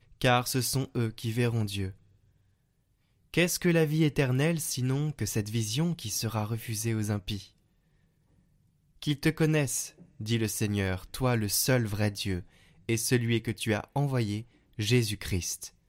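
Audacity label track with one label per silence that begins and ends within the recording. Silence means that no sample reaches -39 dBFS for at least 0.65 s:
1.910000	3.340000	silence
7.440000	9.020000	silence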